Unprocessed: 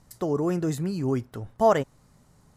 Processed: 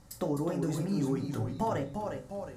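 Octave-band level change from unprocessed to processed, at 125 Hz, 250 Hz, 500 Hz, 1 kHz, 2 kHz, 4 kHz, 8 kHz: −3.0, −3.5, −9.0, −7.5, −7.5, −4.5, −3.5 decibels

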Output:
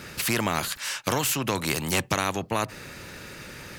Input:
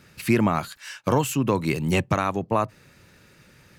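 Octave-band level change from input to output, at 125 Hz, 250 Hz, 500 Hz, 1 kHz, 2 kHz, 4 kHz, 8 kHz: −6.0, −7.0, −5.0, −3.0, +2.0, +7.0, +7.0 decibels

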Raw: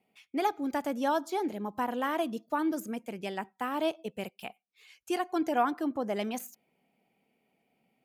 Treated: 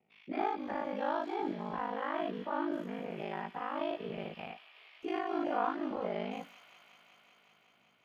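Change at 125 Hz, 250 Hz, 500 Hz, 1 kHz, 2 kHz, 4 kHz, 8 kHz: +0.5 dB, −5.5 dB, −3.5 dB, −3.5 dB, −4.0 dB, −6.0 dB, below −20 dB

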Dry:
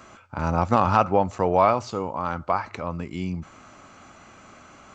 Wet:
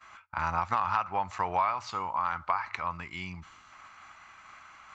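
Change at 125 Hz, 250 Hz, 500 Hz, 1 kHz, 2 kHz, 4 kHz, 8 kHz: −14.5 dB, −17.5 dB, −17.0 dB, −5.5 dB, −1.5 dB, −3.0 dB, can't be measured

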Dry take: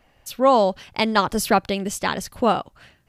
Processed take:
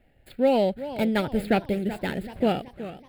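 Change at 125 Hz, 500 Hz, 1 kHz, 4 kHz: 0.0, −3.5, −10.5, −9.0 decibels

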